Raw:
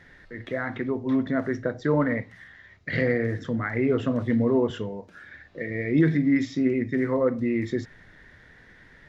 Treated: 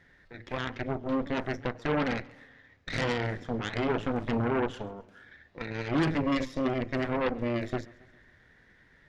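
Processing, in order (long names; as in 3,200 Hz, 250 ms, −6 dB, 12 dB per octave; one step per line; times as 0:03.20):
harmonic generator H 8 −11 dB, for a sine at −10 dBFS
feedback echo with a swinging delay time 136 ms, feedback 53%, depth 134 cents, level −23 dB
level −8 dB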